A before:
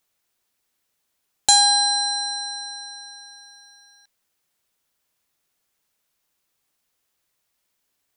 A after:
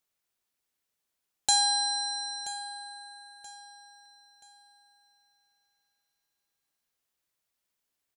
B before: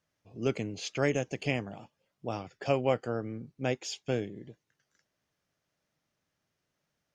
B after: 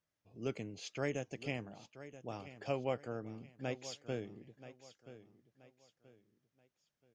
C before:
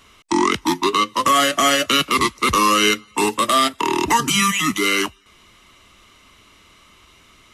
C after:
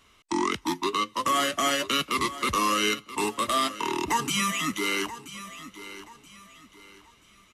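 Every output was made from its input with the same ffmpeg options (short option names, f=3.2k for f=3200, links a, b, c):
-af "aecho=1:1:979|1958|2937:0.188|0.0622|0.0205,volume=-9dB"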